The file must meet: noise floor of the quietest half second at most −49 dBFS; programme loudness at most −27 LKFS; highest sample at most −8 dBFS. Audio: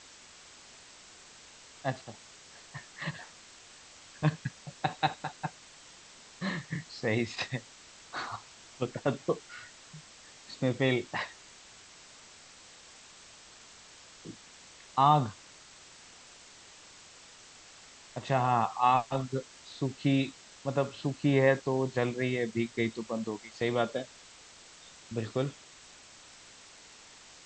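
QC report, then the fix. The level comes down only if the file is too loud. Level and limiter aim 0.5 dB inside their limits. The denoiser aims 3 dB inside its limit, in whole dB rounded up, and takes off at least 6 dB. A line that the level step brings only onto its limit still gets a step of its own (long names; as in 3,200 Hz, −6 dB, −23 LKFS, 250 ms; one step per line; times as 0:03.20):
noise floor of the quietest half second −54 dBFS: in spec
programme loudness −31.5 LKFS: in spec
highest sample −11.0 dBFS: in spec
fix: no processing needed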